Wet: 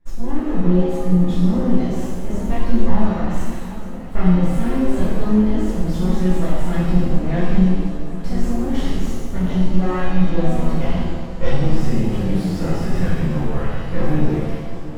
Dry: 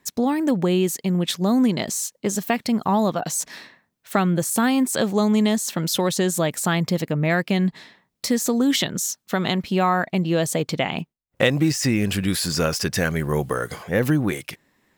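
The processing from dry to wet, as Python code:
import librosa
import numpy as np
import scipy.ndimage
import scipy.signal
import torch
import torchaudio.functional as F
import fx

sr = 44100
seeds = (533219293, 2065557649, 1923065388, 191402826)

p1 = fx.peak_eq(x, sr, hz=350.0, db=-4.0, octaves=1.9)
p2 = p1 + fx.echo_alternate(p1, sr, ms=740, hz=1500.0, feedback_pct=73, wet_db=-13.5, dry=0)
p3 = np.maximum(p2, 0.0)
p4 = fx.tilt_eq(p3, sr, slope=-4.5)
p5 = fx.rev_shimmer(p4, sr, seeds[0], rt60_s=1.3, semitones=7, shimmer_db=-8, drr_db=-11.0)
y = F.gain(torch.from_numpy(p5), -11.0).numpy()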